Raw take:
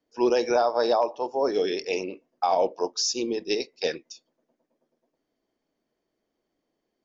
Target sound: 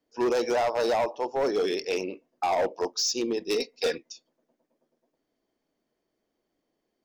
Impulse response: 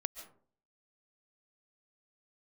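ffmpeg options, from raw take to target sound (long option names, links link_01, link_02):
-filter_complex "[0:a]asettb=1/sr,asplit=3[link_01][link_02][link_03];[link_01]atrim=end=3.544[link_04];[link_02]atrim=start=3.54:end=3.98,asetpts=PTS-STARTPTS,afade=type=in:duration=0.004:curve=qsin,afade=type=out:start_time=0.436:duration=0.004:curve=qsin,aecho=1:1:4.2:0.64,atrim=end_sample=19404[link_05];[link_03]atrim=start=3.976[link_06];[link_04][link_05]acrossfade=duration=0.004:curve1=hsin:curve2=qsin[link_07];[link_07][link_06]acrossfade=duration=0.004:curve1=qsin:curve2=hsin,asoftclip=type=hard:threshold=-21dB"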